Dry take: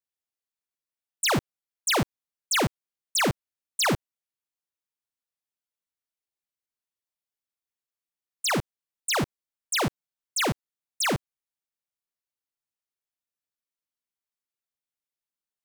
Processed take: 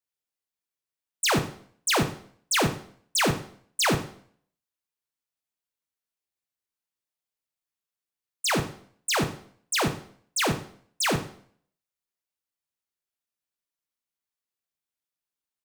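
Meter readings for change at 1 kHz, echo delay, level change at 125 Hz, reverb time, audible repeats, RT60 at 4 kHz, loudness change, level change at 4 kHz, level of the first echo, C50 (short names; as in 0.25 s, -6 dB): +0.5 dB, 90 ms, +1.0 dB, 0.55 s, 1, 0.55 s, +0.5 dB, +0.5 dB, -17.5 dB, 11.5 dB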